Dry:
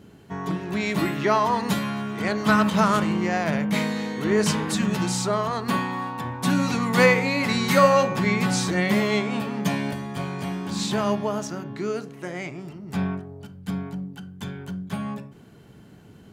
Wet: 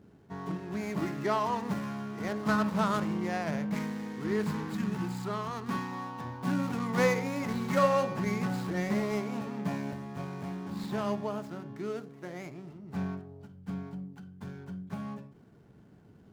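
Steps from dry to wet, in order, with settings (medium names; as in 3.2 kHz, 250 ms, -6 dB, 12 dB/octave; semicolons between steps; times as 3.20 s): median filter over 15 samples; 3.74–5.92 s: peaking EQ 590 Hz -8.5 dB 0.5 oct; trim -8 dB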